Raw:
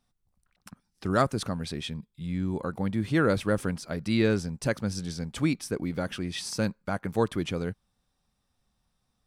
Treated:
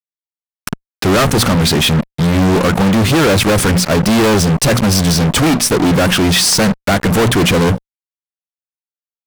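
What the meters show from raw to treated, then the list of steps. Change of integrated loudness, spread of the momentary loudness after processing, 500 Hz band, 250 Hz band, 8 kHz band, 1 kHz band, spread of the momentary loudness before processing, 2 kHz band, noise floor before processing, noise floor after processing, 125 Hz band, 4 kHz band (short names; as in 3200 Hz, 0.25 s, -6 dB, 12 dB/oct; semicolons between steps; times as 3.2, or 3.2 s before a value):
+17.0 dB, 4 LU, +15.0 dB, +16.0 dB, +24.5 dB, +17.0 dB, 10 LU, +17.5 dB, -77 dBFS, under -85 dBFS, +17.5 dB, +23.0 dB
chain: notches 60/120/180/240 Hz; fuzz box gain 45 dB, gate -46 dBFS; gain +3.5 dB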